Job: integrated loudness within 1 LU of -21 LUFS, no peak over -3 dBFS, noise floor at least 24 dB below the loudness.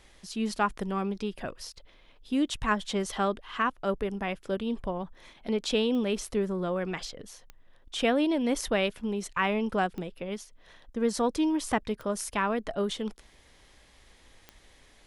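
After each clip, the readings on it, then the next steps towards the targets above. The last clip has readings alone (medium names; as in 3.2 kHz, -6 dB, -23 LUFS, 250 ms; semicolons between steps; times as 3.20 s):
clicks found 5; loudness -30.0 LUFS; peak level -13.0 dBFS; loudness target -21.0 LUFS
-> de-click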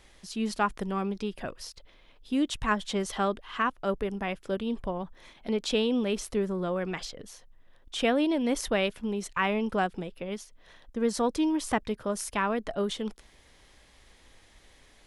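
clicks found 0; loudness -30.0 LUFS; peak level -13.0 dBFS; loudness target -21.0 LUFS
-> trim +9 dB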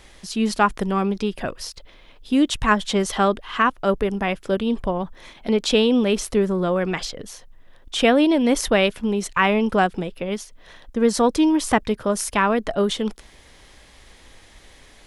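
loudness -21.0 LUFS; peak level -4.0 dBFS; noise floor -50 dBFS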